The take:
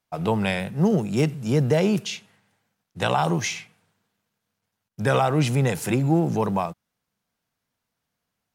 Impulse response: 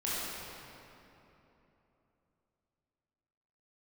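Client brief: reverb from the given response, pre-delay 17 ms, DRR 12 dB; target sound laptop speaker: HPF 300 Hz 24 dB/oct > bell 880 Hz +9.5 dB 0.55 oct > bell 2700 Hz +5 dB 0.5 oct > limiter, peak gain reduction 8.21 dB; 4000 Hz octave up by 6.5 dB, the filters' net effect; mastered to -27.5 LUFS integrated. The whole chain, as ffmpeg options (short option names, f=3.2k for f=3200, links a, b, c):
-filter_complex "[0:a]equalizer=f=4k:t=o:g=5.5,asplit=2[a][b];[1:a]atrim=start_sample=2205,adelay=17[c];[b][c]afir=irnorm=-1:irlink=0,volume=-19dB[d];[a][d]amix=inputs=2:normalize=0,highpass=f=300:w=0.5412,highpass=f=300:w=1.3066,equalizer=f=880:t=o:w=0.55:g=9.5,equalizer=f=2.7k:t=o:w=0.5:g=5,volume=-2.5dB,alimiter=limit=-14dB:level=0:latency=1"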